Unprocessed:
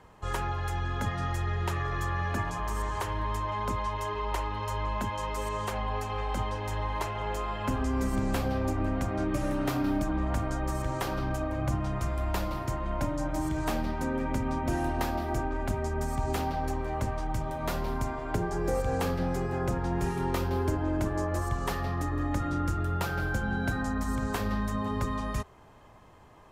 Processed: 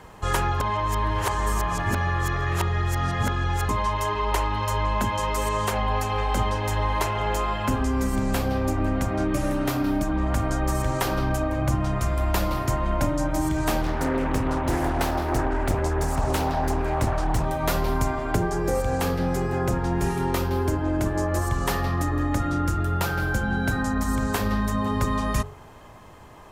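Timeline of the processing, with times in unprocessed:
0.6–3.69 reverse
13.81–17.45 Doppler distortion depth 0.84 ms
whole clip: high shelf 7500 Hz +5 dB; de-hum 46.7 Hz, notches 28; vocal rider 0.5 s; gain +6.5 dB

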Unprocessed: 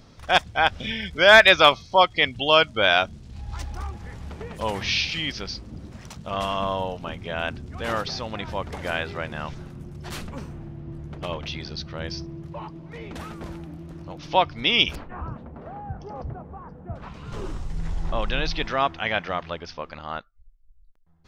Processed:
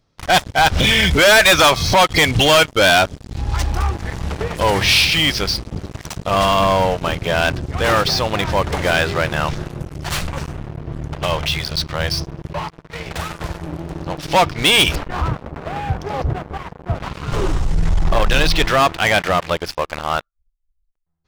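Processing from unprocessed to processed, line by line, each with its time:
0.61–2.58 upward compressor, threshold -15 dBFS
9.86–13.64 bell 290 Hz -12 dB 0.94 oct
whole clip: bell 230 Hz -9 dB 0.27 oct; sample leveller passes 5; gain -4.5 dB

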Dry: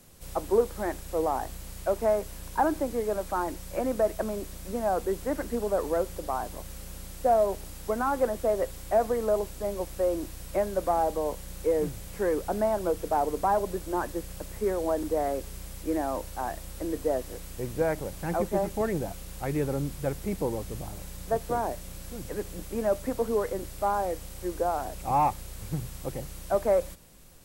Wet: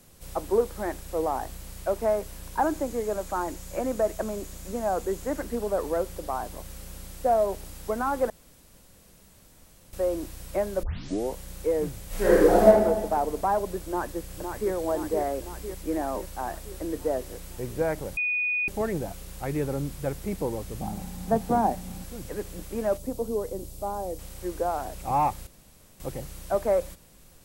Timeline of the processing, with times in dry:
2.61–5.41 bell 6900 Hz +7 dB 0.24 oct
8.3–9.93 room tone
10.83 tape start 0.51 s
12.07–12.65 reverb throw, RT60 1.3 s, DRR -9.5 dB
13.81–14.72 echo throw 0.51 s, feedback 65%, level -6 dB
18.17–18.68 bleep 2470 Hz -23.5 dBFS
20.81–22.04 small resonant body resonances 210/780 Hz, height 15 dB
22.97–24.19 bell 1700 Hz -15 dB 1.6 oct
25.47–26 room tone

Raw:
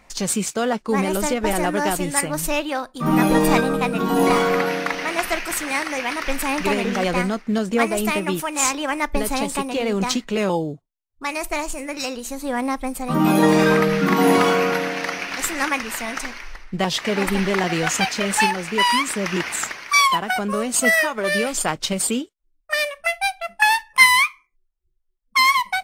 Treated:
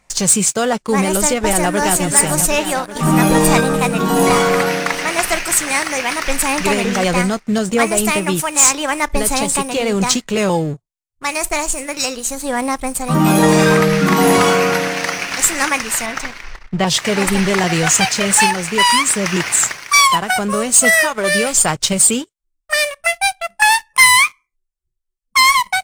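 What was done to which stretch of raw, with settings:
1.39–2.03 echo throw 0.38 s, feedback 80%, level -9 dB
16.06–16.87 Bessel low-pass 3900 Hz
whole clip: graphic EQ 125/250/8000 Hz +8/-4/+9 dB; sample leveller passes 2; gain -2.5 dB

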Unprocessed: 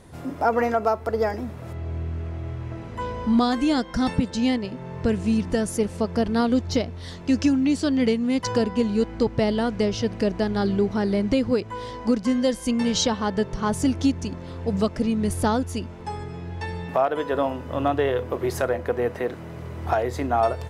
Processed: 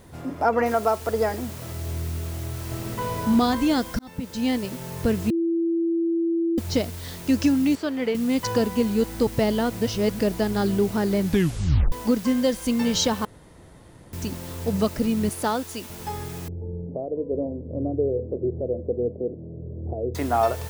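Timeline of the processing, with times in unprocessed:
0.66 noise floor step -65 dB -43 dB
2.53–3.27 reverb throw, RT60 2.3 s, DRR -0.5 dB
3.99–4.59 fade in
5.3–6.58 bleep 334 Hz -20 dBFS
7.75–8.15 tone controls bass -15 dB, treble -13 dB
9.7–10.19 reverse
11.19 tape stop 0.73 s
13.25–14.13 room tone
15.29–15.9 HPF 420 Hz 6 dB/oct
16.48–20.15 steep low-pass 530 Hz

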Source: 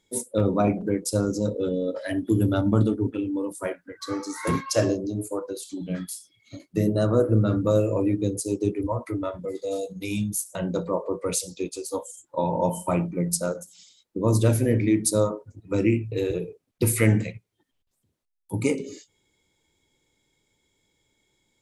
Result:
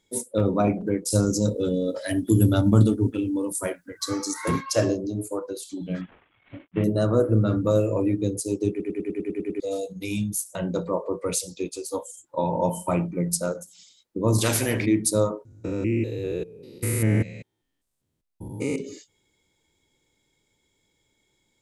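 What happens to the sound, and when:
1.1–4.34 tone controls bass +5 dB, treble +12 dB
6.01–6.84 CVSD 16 kbps
8.7 stutter in place 0.10 s, 9 plays
14.38–14.86 spectral compressor 2:1
15.45–18.76 stepped spectrum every 0.2 s

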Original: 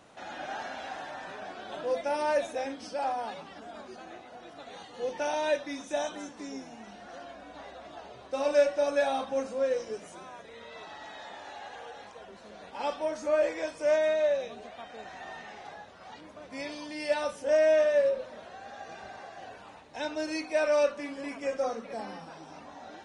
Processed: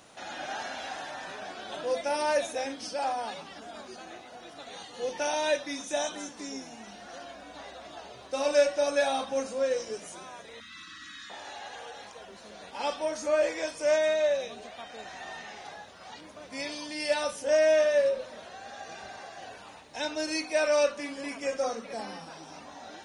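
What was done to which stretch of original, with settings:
10.6–11.3 Chebyshev band-stop 330–1100 Hz, order 5
whole clip: high shelf 3400 Hz +10.5 dB; notch 7800 Hz, Q 18

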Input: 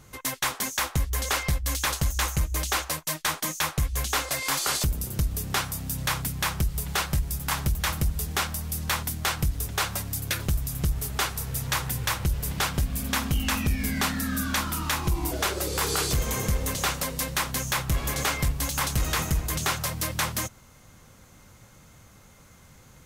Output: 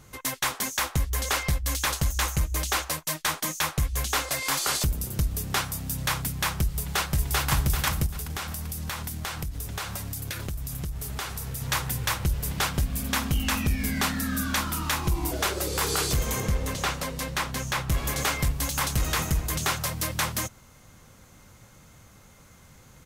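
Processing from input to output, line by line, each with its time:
6.79–7.49 echo throw 0.39 s, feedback 40%, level -0.5 dB
8.06–11.62 compressor, threshold -29 dBFS
16.4–17.9 high shelf 7100 Hz -9.5 dB

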